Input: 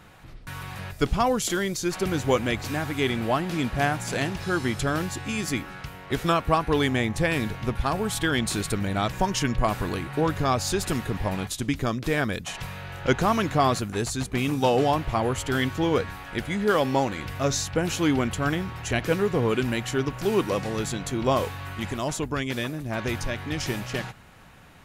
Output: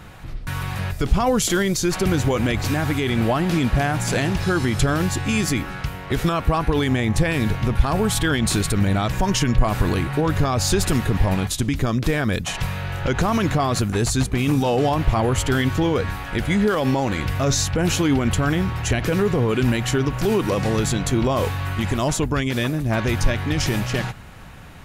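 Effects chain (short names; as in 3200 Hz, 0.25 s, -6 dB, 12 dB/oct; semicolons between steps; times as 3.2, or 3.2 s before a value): limiter -18.5 dBFS, peak gain reduction 10.5 dB; low shelf 130 Hz +7.5 dB; gain +7 dB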